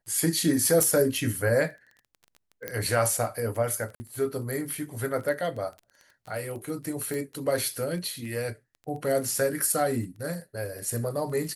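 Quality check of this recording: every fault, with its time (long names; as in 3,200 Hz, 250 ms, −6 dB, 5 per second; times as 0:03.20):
surface crackle 18 per second −36 dBFS
0:00.83: click
0:02.68: click −15 dBFS
0:03.95–0:04.00: drop-out 50 ms
0:07.14: click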